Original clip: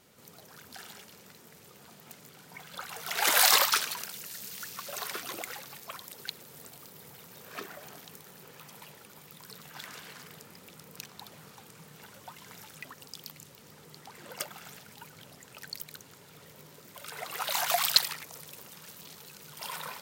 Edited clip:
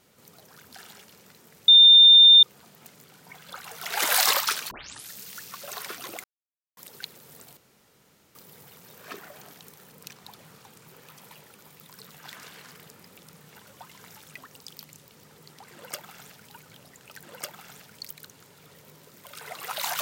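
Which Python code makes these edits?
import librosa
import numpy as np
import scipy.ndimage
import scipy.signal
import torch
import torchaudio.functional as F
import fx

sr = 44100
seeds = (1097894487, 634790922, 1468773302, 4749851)

y = fx.edit(x, sr, fx.insert_tone(at_s=1.68, length_s=0.75, hz=3610.0, db=-9.0),
    fx.tape_start(start_s=3.96, length_s=0.4),
    fx.silence(start_s=5.49, length_s=0.53),
    fx.insert_room_tone(at_s=6.82, length_s=0.78),
    fx.move(start_s=10.85, length_s=0.96, to_s=8.39),
    fx.duplicate(start_s=14.2, length_s=0.76, to_s=15.7), tone=tone)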